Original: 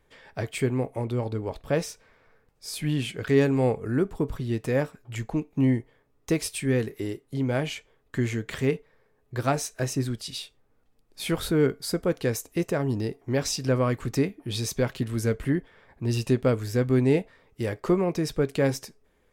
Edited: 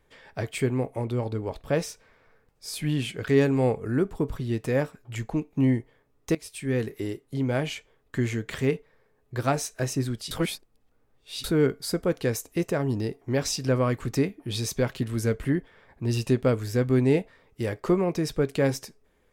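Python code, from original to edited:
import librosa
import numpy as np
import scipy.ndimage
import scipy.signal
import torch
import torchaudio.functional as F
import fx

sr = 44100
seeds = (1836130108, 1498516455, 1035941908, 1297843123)

y = fx.edit(x, sr, fx.fade_in_from(start_s=6.35, length_s=0.52, floor_db=-18.5),
    fx.reverse_span(start_s=10.31, length_s=1.13), tone=tone)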